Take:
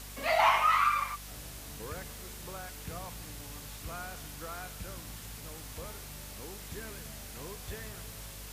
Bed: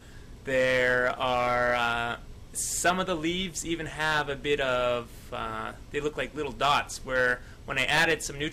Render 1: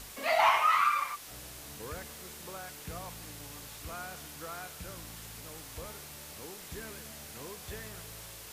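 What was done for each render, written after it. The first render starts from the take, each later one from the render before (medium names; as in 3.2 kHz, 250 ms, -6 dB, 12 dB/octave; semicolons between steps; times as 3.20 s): de-hum 50 Hz, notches 5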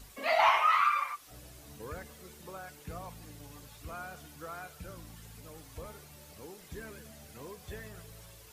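noise reduction 10 dB, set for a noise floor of -47 dBFS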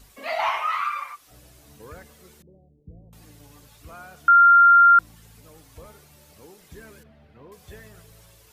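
2.42–3.13 s: Gaussian low-pass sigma 21 samples; 4.28–4.99 s: bleep 1.39 kHz -9.5 dBFS; 7.03–7.52 s: distance through air 390 m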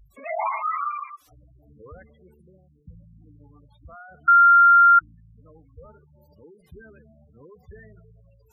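spectral gate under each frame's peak -10 dB strong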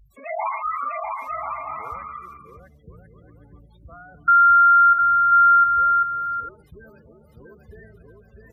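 bouncing-ball echo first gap 650 ms, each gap 0.6×, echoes 5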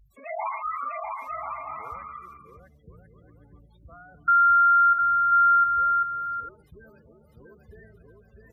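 trim -4.5 dB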